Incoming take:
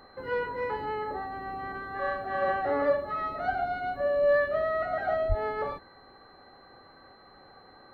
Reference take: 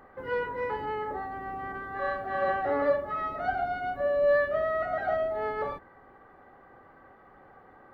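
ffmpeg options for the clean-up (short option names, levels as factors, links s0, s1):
-filter_complex "[0:a]bandreject=f=4100:w=30,asplit=3[s0][s1][s2];[s0]afade=t=out:st=5.28:d=0.02[s3];[s1]highpass=f=140:w=0.5412,highpass=f=140:w=1.3066,afade=t=in:st=5.28:d=0.02,afade=t=out:st=5.4:d=0.02[s4];[s2]afade=t=in:st=5.4:d=0.02[s5];[s3][s4][s5]amix=inputs=3:normalize=0"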